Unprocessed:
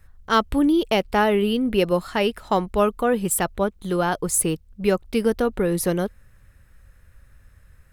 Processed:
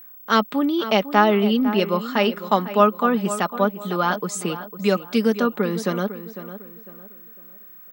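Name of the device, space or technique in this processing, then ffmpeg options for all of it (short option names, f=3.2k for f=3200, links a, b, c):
old television with a line whistle: -filter_complex "[0:a]asettb=1/sr,asplit=3[a][b][c];[a]atrim=end=4.844[d];[b]atrim=start=4.84:end=5.4,asetpts=PTS-STARTPTS,afade=t=in:d=0.004:c=qsin,afade=t=out:st=0.556:d=0.004:c=qsin,aemphasis=mode=production:type=cd[e];[c]atrim=start=5.396[f];[d][e]acrossfade=d=0.004:c1=hsin:c2=qsin[g];[g][f]acrossfade=d=0.004:c1=qsin:c2=hsin,highpass=f=210:w=0.5412,highpass=f=210:w=1.3066,equalizer=f=380:t=q:w=4:g=-6,equalizer=f=1.2k:t=q:w=4:g=6,equalizer=f=3.7k:t=q:w=4:g=3,lowpass=f=7k:w=0.5412,lowpass=f=7k:w=1.3066,equalizer=f=210:w=1.1:g=3.5,aecho=1:1:4.9:0.45,aeval=exprs='val(0)+0.00891*sin(2*PI*15734*n/s)':c=same,asplit=2[h][i];[i]adelay=502,lowpass=f=2.6k:p=1,volume=-12.5dB,asplit=2[j][k];[k]adelay=502,lowpass=f=2.6k:p=1,volume=0.35,asplit=2[l][m];[m]adelay=502,lowpass=f=2.6k:p=1,volume=0.35,asplit=2[n][o];[o]adelay=502,lowpass=f=2.6k:p=1,volume=0.35[p];[h][j][l][n][p]amix=inputs=5:normalize=0"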